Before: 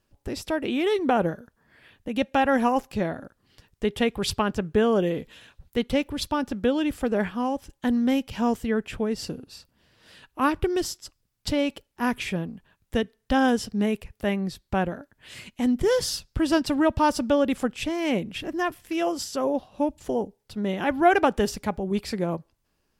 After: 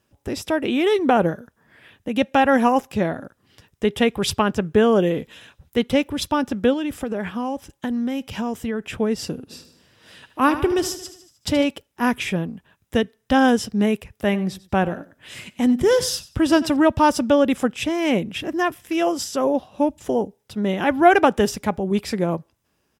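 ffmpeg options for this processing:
-filter_complex "[0:a]asettb=1/sr,asplit=3[a][b][c];[a]atrim=end=6.734[d];[b]atrim=start=6.73:end=8.95,asetpts=PTS-STARTPTS,afade=t=in:d=0.004:c=qsin,afade=t=out:st=2.216:d=0.004:c=qsin,acompressor=threshold=-26dB:ratio=6:attack=3.2:release=140:knee=1:detection=peak[e];[c]atrim=start=8.946[f];[d][e]acrossfade=d=0.004:c1=hsin:c2=qsin[g];[g][f]acrossfade=d=0.004:c1=qsin:c2=hsin,asplit=3[h][i][j];[h]afade=t=out:st=9.49:d=0.02[k];[i]aecho=1:1:76|152|228|304|380|456:0.251|0.146|0.0845|0.049|0.0284|0.0165,afade=t=in:st=9.49:d=0.02,afade=t=out:st=11.63:d=0.02[l];[j]afade=t=in:st=11.63:d=0.02[m];[k][l][m]amix=inputs=3:normalize=0,asplit=3[n][o][p];[n]afade=t=out:st=14.27:d=0.02[q];[o]aecho=1:1:94|188:0.126|0.029,afade=t=in:st=14.27:d=0.02,afade=t=out:st=16.75:d=0.02[r];[p]afade=t=in:st=16.75:d=0.02[s];[q][r][s]amix=inputs=3:normalize=0,highpass=73,bandreject=f=4.4k:w=9,volume=5dB"

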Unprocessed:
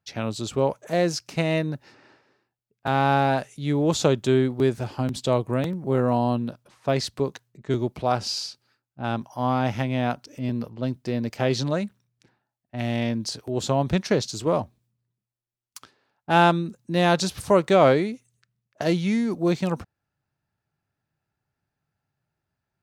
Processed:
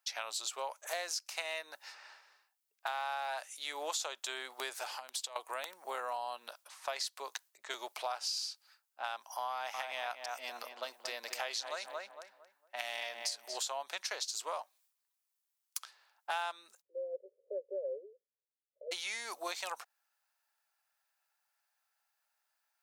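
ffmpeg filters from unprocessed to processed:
-filter_complex "[0:a]asettb=1/sr,asplit=3[a][b][c];[a]atrim=end=4.934[d];[b]atrim=start=4.93:end=5.36,asetpts=PTS-STARTPTS,afade=t=in:d=0.004:c=qsin,afade=t=out:st=0.426:d=0.004:c=qsin,acompressor=threshold=-33dB:ratio=16:attack=3.2:release=140:knee=1:detection=peak[e];[c]atrim=start=5.356[f];[d][e]acrossfade=d=0.004:c1=hsin:c2=qsin[g];[g][f]acrossfade=d=0.004:c1=qsin:c2=hsin,asettb=1/sr,asplit=3[h][i][j];[h]atrim=end=9.514[k];[i]atrim=start=9.51:end=13.58,asetpts=PTS-STARTPTS,afade=t=in:d=0.004:c=qsin,afade=t=out:st=4.066:d=0.004:c=qsin,asplit=2[l][m];[m]adelay=228,lowpass=f=2k:p=1,volume=-7dB,asplit=2[n][o];[o]adelay=228,lowpass=f=2k:p=1,volume=0.31,asplit=2[p][q];[q]adelay=228,lowpass=f=2k:p=1,volume=0.31,asplit=2[r][s];[s]adelay=228,lowpass=f=2k:p=1,volume=0.31[t];[l][n][p][r][t]amix=inputs=5:normalize=0,atrim=end_sample=179487[u];[j]atrim=start=13.576[v];[k][u]acrossfade=d=0.004:c1=hsin:c2=qsin[w];[w][v]acrossfade=d=0.004:c1=qsin:c2=hsin,asplit=3[x][y][z];[x]afade=t=out:st=16.8:d=0.02[aa];[y]asuperpass=centerf=460:order=12:qfactor=2.4,afade=t=in:st=16.8:d=0.02,afade=t=out:st=18.91:d=0.02[ab];[z]afade=t=in:st=18.91:d=0.02[ac];[aa][ab][ac]amix=inputs=3:normalize=0,highpass=f=750:w=0.5412,highpass=f=750:w=1.3066,highshelf=f=5.3k:g=10.5,acompressor=threshold=-37dB:ratio=5,volume=1dB"

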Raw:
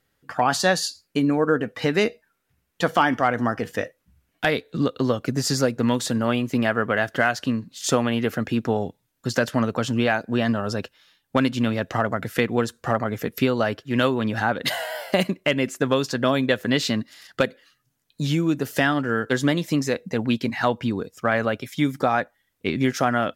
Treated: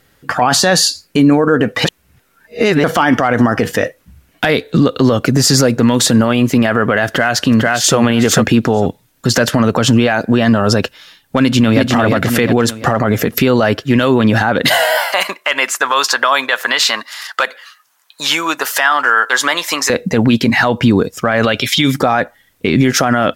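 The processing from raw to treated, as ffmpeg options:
-filter_complex "[0:a]asplit=2[a][b];[b]afade=t=in:st=7.06:d=0.01,afade=t=out:st=7.96:d=0.01,aecho=0:1:450|900:0.530884|0.0530884[c];[a][c]amix=inputs=2:normalize=0,asplit=2[d][e];[e]afade=t=in:st=11.41:d=0.01,afade=t=out:st=11.94:d=0.01,aecho=0:1:350|700|1050|1400|1750:0.668344|0.23392|0.0818721|0.0286552|0.0100293[f];[d][f]amix=inputs=2:normalize=0,asettb=1/sr,asplit=3[g][h][i];[g]atrim=end=14.974[j];[h]atrim=start=14.97:end=19.9,asetpts=PTS-STARTPTS,afade=t=in:d=0.004:c=qsin,afade=t=out:st=4.926:d=0.004:c=qsin,highpass=f=1k:t=q:w=2.2[k];[i]atrim=start=19.896[l];[j][k]acrossfade=d=0.004:c1=hsin:c2=qsin[m];[m][l]acrossfade=d=0.004:c1=qsin:c2=hsin,asettb=1/sr,asplit=3[n][o][p];[n]atrim=end=21.434[q];[o]atrim=start=21.43:end=21.94,asetpts=PTS-STARTPTS,afade=t=in:d=0.004:c=qsin,afade=t=out:st=0.506:d=0.004:c=qsin,equalizer=f=3.4k:w=0.87:g=12.5[r];[p]atrim=start=21.936[s];[q][r]acrossfade=d=0.004:c1=hsin:c2=qsin[t];[t][s]acrossfade=d=0.004:c1=qsin:c2=hsin,asplit=3[u][v][w];[u]atrim=end=1.852[x];[v]atrim=start=1.848:end=2.842,asetpts=PTS-STARTPTS,areverse[y];[w]atrim=start=2.838[z];[x][y]acrossfade=d=0.004:c1=hsin:c2=hsin[aa];[aa][z]acrossfade=d=0.004:c1=hsin:c2=hsin,alimiter=level_in=18.5dB:limit=-1dB:release=50:level=0:latency=1,volume=-1dB"

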